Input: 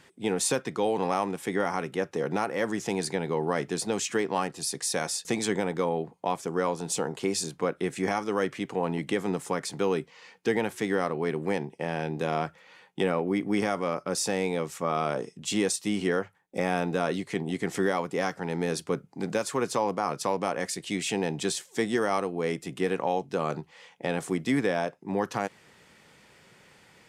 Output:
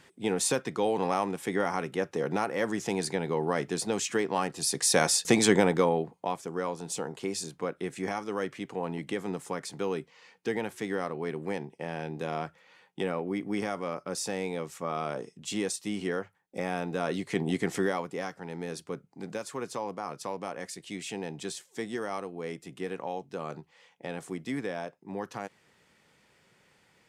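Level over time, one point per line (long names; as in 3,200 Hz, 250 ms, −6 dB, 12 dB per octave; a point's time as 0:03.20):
0:04.39 −1 dB
0:04.98 +6 dB
0:05.64 +6 dB
0:06.43 −5 dB
0:16.89 −5 dB
0:17.49 +2.5 dB
0:18.32 −8 dB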